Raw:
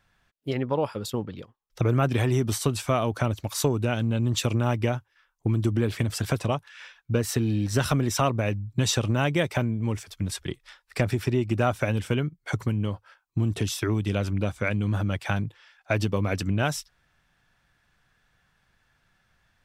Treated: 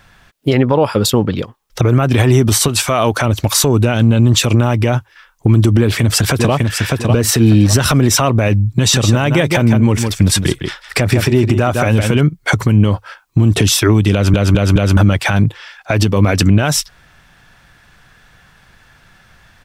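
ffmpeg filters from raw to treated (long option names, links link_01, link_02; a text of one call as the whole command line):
ffmpeg -i in.wav -filter_complex "[0:a]asettb=1/sr,asplit=3[link_01][link_02][link_03];[link_01]atrim=end=2.684[link_04];[link_02]atrim=start=2.68:end=3.25,asetpts=PTS-STARTPTS,afade=type=in:duration=0.004:curve=qsin,afade=type=out:start_time=0.566:duration=0.004:curve=qsin,lowshelf=frequency=410:gain=-7.5[link_05];[link_03]atrim=start=3.246[link_06];[link_04][link_05]acrossfade=duration=0.004:curve1=hsin:curve2=qsin[link_07];[link_07][link_06]acrossfade=duration=0.004:curve1=qsin:curve2=hsin,asplit=2[link_08][link_09];[link_09]afade=type=in:start_time=5.79:duration=0.01,afade=type=out:start_time=6.53:duration=0.01,aecho=0:1:600|1200|1800:0.375837|0.0939594|0.0234898[link_10];[link_08][link_10]amix=inputs=2:normalize=0,asettb=1/sr,asplit=3[link_11][link_12][link_13];[link_11]atrim=end=8.784[link_14];[link_12]atrim=start=8.78:end=12.21,asetpts=PTS-STARTPTS,afade=type=in:duration=0.004:curve=qsin,afade=type=out:start_time=3.426:duration=0.004:curve=qsin,aecho=1:1:158:0.299,atrim=end_sample=151263[link_15];[link_13]atrim=start=12.206[link_16];[link_14][link_15]acrossfade=duration=0.004:curve1=hsin:curve2=qsin[link_17];[link_17][link_16]acrossfade=duration=0.004:curve1=qsin:curve2=hsin,asplit=5[link_18][link_19][link_20][link_21][link_22];[link_18]atrim=end=14.342[link_23];[link_19]atrim=start=14.128:end=14.342[link_24];[link_20]atrim=start=14.128:end=14.342[link_25];[link_21]atrim=start=14.128:end=14.342[link_26];[link_22]atrim=start=14.968[link_27];[link_23][link_24]acrossfade=duration=0.004:curve1=hsin:curve2=hsin[link_28];[link_28][link_25]acrossfade=duration=0.004:curve1=hsin:curve2=hsin[link_29];[link_29][link_26]acrossfade=duration=0.004:curve1=hsin:curve2=hsin[link_30];[link_30][link_27]acrossfade=duration=0.004:curve1=hsin:curve2=hsin,acompressor=threshold=-24dB:ratio=6,alimiter=level_in=21dB:limit=-1dB:release=50:level=0:latency=1,volume=-1dB" out.wav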